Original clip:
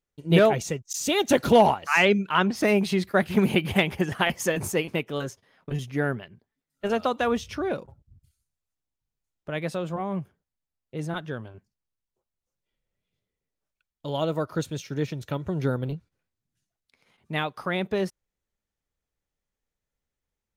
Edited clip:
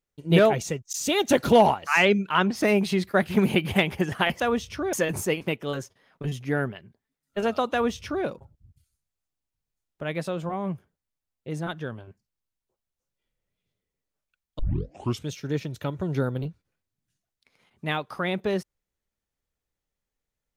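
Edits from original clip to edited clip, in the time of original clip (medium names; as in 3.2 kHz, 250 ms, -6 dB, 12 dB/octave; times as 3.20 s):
7.19–7.72 s: copy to 4.40 s
14.06 s: tape start 0.68 s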